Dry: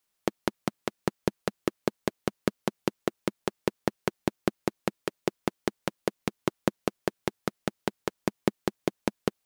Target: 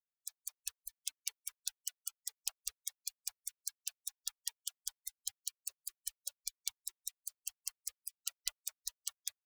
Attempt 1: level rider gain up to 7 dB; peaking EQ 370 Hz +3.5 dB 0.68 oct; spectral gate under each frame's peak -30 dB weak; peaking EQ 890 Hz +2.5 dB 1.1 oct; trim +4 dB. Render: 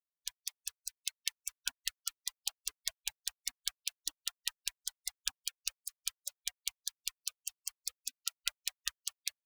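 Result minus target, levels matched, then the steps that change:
500 Hz band +2.5 dB
change: first peaking EQ 370 Hz -3 dB 0.68 oct

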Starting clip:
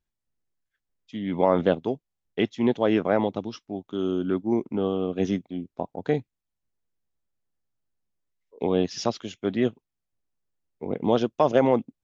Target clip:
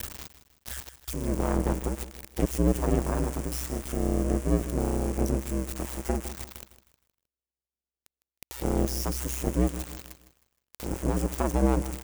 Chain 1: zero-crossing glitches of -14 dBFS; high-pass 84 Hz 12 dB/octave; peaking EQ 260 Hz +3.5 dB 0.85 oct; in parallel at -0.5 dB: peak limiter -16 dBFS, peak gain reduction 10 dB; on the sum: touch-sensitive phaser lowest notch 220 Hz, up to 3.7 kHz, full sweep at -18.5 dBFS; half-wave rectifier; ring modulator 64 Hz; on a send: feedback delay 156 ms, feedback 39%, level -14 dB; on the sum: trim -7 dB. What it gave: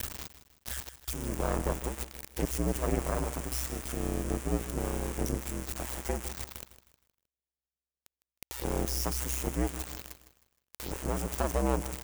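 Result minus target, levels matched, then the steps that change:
250 Hz band -2.5 dB
change: peaking EQ 260 Hz +13.5 dB 0.85 oct

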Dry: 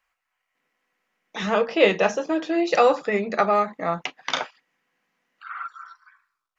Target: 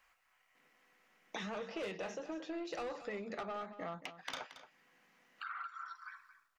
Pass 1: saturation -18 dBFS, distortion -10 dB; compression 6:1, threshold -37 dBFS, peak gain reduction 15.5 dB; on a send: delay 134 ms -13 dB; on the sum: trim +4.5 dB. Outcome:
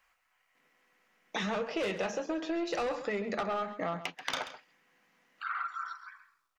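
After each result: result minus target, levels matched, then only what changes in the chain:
compression: peak gain reduction -8.5 dB; echo 92 ms early
change: compression 6:1, threshold -47.5 dBFS, peak gain reduction 24.5 dB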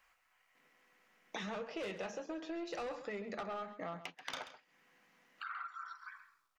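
echo 92 ms early
change: delay 226 ms -13 dB

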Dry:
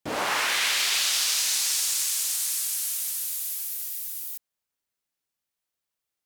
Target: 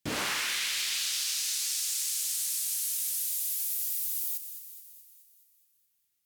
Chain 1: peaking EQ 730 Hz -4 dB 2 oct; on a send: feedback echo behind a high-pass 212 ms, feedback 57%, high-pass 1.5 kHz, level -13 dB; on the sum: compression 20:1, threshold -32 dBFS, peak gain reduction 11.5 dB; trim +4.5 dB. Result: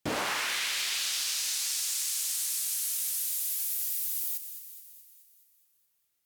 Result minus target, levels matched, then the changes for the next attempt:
1 kHz band +4.0 dB
change: peaking EQ 730 Hz -12.5 dB 2 oct

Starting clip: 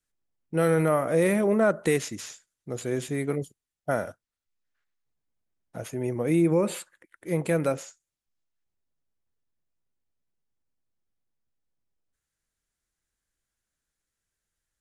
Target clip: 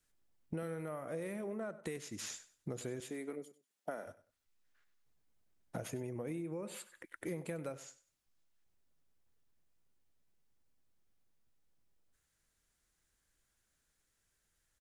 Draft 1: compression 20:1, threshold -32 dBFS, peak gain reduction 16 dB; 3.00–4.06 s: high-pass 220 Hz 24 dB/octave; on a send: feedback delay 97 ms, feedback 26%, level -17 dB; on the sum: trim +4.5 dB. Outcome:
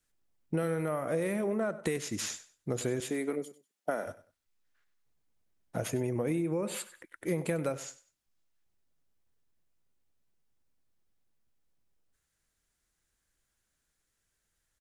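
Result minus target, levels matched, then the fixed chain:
compression: peak gain reduction -10 dB
compression 20:1, threshold -42.5 dBFS, peak gain reduction 26 dB; 3.00–4.06 s: high-pass 220 Hz 24 dB/octave; on a send: feedback delay 97 ms, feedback 26%, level -17 dB; on the sum: trim +4.5 dB

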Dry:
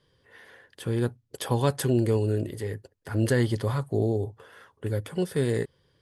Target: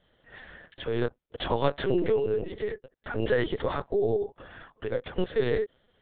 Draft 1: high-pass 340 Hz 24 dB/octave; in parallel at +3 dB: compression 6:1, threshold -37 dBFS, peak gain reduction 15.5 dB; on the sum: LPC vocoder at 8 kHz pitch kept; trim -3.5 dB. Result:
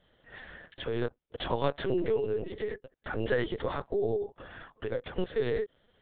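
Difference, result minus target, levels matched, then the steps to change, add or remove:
compression: peak gain reduction +9.5 dB
change: compression 6:1, threshold -25.5 dBFS, peak gain reduction 6 dB

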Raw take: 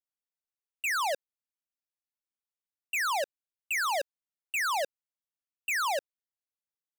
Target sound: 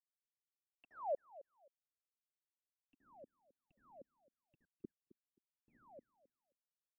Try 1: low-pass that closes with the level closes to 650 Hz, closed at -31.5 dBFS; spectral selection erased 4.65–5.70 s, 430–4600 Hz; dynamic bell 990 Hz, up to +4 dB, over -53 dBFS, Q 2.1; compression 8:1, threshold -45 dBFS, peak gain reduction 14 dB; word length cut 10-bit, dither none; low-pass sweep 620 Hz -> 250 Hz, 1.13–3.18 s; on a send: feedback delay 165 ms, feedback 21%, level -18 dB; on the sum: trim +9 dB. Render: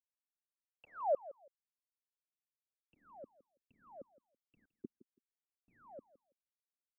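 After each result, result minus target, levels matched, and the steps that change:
echo 100 ms early; compression: peak gain reduction -6.5 dB
change: feedback delay 265 ms, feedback 21%, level -18 dB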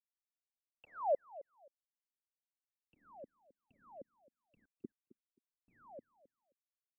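compression: peak gain reduction -6.5 dB
change: compression 8:1, threshold -52.5 dBFS, peak gain reduction 21 dB

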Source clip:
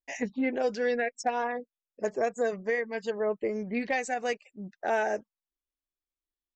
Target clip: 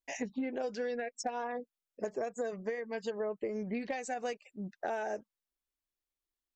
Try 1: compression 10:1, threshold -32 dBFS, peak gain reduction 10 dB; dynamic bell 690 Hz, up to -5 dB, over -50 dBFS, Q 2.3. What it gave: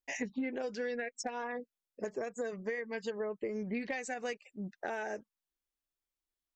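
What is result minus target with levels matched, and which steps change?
2 kHz band +4.0 dB
change: dynamic bell 2 kHz, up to -5 dB, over -50 dBFS, Q 2.3

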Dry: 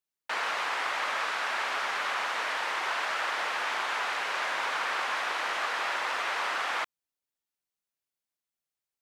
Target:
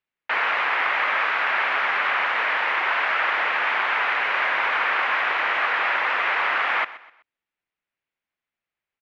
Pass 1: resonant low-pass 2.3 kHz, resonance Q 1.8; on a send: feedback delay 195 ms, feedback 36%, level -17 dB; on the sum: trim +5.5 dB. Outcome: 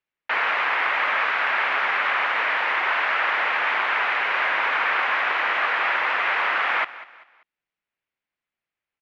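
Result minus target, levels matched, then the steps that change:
echo 69 ms late
change: feedback delay 126 ms, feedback 36%, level -17 dB

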